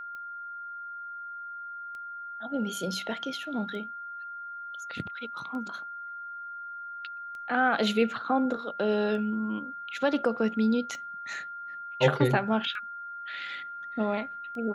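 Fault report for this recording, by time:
tick 33 1/3 rpm -31 dBFS
tone 1400 Hz -37 dBFS

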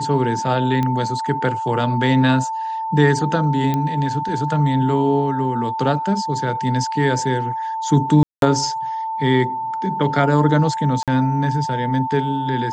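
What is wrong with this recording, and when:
tone 890 Hz -22 dBFS
0.83 pop -10 dBFS
3.74 pop -9 dBFS
8.23–8.42 gap 0.192 s
11.03–11.08 gap 47 ms

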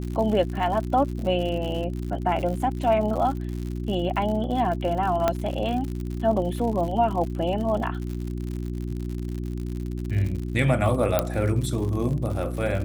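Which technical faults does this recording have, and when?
crackle 87/s -31 dBFS
hum 60 Hz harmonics 6 -30 dBFS
5.28 pop -8 dBFS
11.19 pop -6 dBFS

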